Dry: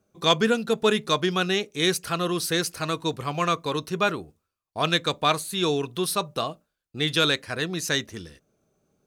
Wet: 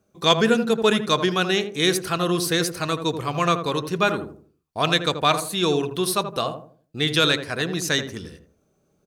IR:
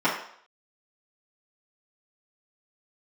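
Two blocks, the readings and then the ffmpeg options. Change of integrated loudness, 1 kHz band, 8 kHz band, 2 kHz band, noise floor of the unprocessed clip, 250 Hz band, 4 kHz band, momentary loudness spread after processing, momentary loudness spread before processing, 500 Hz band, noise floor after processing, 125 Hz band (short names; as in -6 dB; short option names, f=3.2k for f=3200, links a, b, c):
+3.0 dB, +3.0 dB, +2.5 dB, +2.5 dB, -82 dBFS, +3.5 dB, +2.5 dB, 9 LU, 7 LU, +3.0 dB, -68 dBFS, +3.5 dB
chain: -filter_complex "[0:a]asplit=2[a][b];[b]adelay=81,lowpass=f=800:p=1,volume=-6dB,asplit=2[c][d];[d]adelay=81,lowpass=f=800:p=1,volume=0.39,asplit=2[e][f];[f]adelay=81,lowpass=f=800:p=1,volume=0.39,asplit=2[g][h];[h]adelay=81,lowpass=f=800:p=1,volume=0.39,asplit=2[i][j];[j]adelay=81,lowpass=f=800:p=1,volume=0.39[k];[a][c][e][g][i][k]amix=inputs=6:normalize=0,volume=2.5dB"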